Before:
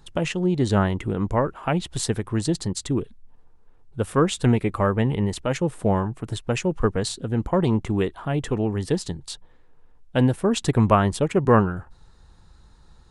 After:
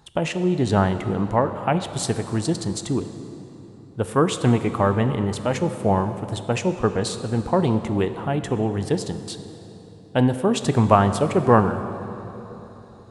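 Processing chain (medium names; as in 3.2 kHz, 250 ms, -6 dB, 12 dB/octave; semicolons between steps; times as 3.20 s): high-pass 63 Hz; peaking EQ 780 Hz +5.5 dB 0.64 oct; on a send: reverberation RT60 3.7 s, pre-delay 14 ms, DRR 9.5 dB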